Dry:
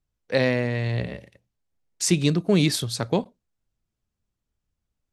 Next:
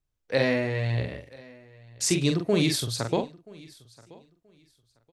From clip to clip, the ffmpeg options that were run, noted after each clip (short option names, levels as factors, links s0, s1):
-filter_complex "[0:a]equalizer=f=190:w=3.8:g=-7.5,asplit=2[s0][s1];[s1]adelay=44,volume=0.531[s2];[s0][s2]amix=inputs=2:normalize=0,aecho=1:1:979|1958:0.0668|0.014,volume=0.75"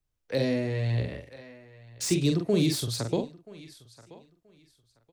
-filter_complex "[0:a]acrossover=split=340|510|3600[s0][s1][s2][s3];[s2]acompressor=threshold=0.01:ratio=6[s4];[s3]asoftclip=type=hard:threshold=0.0316[s5];[s0][s1][s4][s5]amix=inputs=4:normalize=0"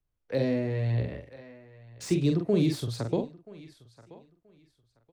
-af "highshelf=f=3100:g=-12"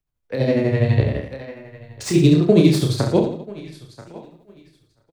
-filter_complex "[0:a]dynaudnorm=f=130:g=7:m=3.98,tremolo=f=12:d=0.8,asplit=2[s0][s1];[s1]aecho=0:1:30|67.5|114.4|173|246.2:0.631|0.398|0.251|0.158|0.1[s2];[s0][s2]amix=inputs=2:normalize=0,volume=1.33"